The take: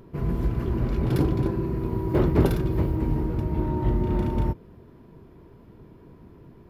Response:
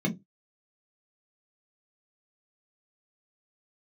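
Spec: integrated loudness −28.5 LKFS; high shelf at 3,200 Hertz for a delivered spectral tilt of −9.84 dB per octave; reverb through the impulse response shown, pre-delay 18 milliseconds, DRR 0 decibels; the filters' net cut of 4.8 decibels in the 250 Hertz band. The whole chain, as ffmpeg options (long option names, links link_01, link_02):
-filter_complex "[0:a]equalizer=frequency=250:width_type=o:gain=-7.5,highshelf=frequency=3200:gain=7.5,asplit=2[link_01][link_02];[1:a]atrim=start_sample=2205,adelay=18[link_03];[link_02][link_03]afir=irnorm=-1:irlink=0,volume=-7.5dB[link_04];[link_01][link_04]amix=inputs=2:normalize=0,volume=-11dB"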